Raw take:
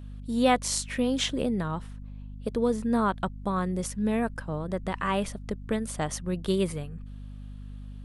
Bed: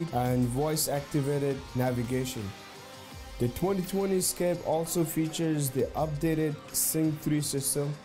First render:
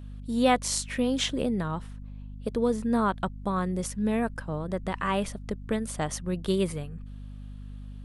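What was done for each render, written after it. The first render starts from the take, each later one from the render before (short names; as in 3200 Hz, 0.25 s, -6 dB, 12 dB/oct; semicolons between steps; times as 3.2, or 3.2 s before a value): nothing audible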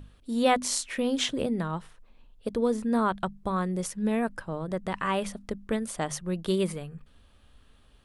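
notches 50/100/150/200/250 Hz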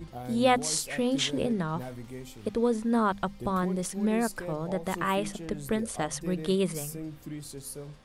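add bed -11.5 dB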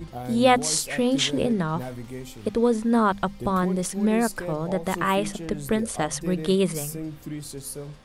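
gain +5 dB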